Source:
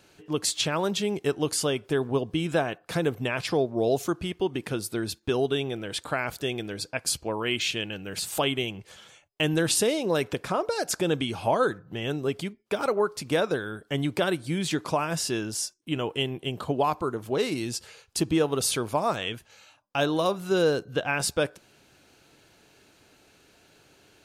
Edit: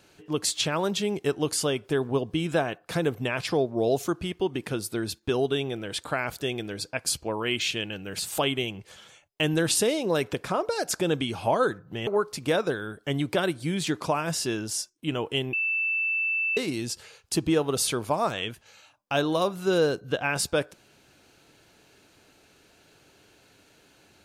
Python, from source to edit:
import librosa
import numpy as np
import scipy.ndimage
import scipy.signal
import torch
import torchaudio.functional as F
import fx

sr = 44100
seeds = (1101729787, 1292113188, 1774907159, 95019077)

y = fx.edit(x, sr, fx.cut(start_s=12.07, length_s=0.84),
    fx.bleep(start_s=16.37, length_s=1.04, hz=2650.0, db=-23.5), tone=tone)